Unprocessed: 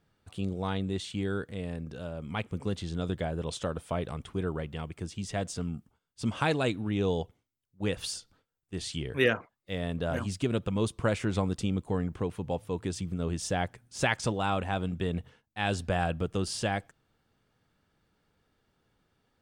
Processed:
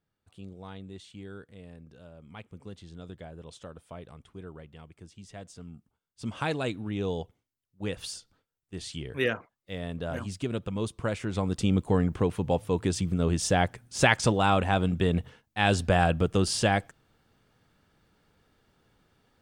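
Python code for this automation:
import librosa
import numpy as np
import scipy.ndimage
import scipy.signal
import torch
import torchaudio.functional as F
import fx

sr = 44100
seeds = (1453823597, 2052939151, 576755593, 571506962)

y = fx.gain(x, sr, db=fx.line((5.57, -11.5), (6.45, -2.5), (11.29, -2.5), (11.73, 6.0)))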